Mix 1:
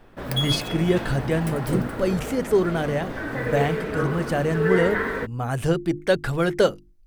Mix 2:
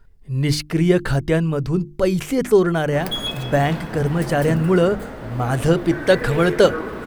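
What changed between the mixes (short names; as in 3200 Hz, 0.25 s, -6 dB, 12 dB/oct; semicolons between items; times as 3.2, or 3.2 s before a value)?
speech +5.0 dB; background: entry +2.75 s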